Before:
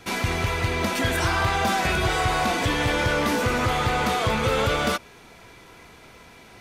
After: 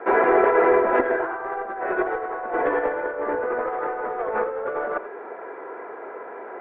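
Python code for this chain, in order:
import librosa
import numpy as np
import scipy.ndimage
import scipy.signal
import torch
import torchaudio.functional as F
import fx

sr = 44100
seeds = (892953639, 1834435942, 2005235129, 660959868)

y = scipy.signal.sosfilt(scipy.signal.ellip(3, 1.0, 60, [400.0, 1700.0], 'bandpass', fs=sr, output='sos'), x)
y = fx.over_compress(y, sr, threshold_db=-31.0, ratio=-0.5)
y = fx.tilt_eq(y, sr, slope=-3.5)
y = y + 10.0 ** (-15.0 / 20.0) * np.pad(y, (int(83 * sr / 1000.0), 0))[:len(y)]
y = fx.dynamic_eq(y, sr, hz=1000.0, q=1.0, threshold_db=-45.0, ratio=4.0, max_db=-3)
y = y * 10.0 ** (9.0 / 20.0)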